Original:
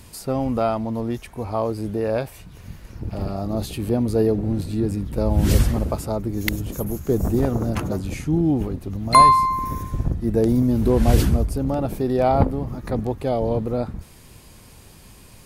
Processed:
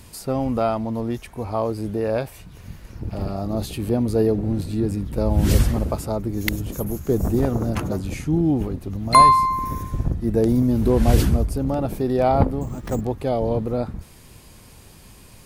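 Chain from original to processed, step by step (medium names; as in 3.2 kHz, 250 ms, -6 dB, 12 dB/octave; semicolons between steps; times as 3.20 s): 12.61–13.01 s: careless resampling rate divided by 6×, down none, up hold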